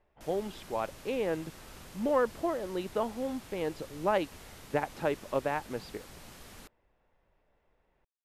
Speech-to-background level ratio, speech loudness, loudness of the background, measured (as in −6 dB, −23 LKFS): 16.5 dB, −33.5 LKFS, −50.0 LKFS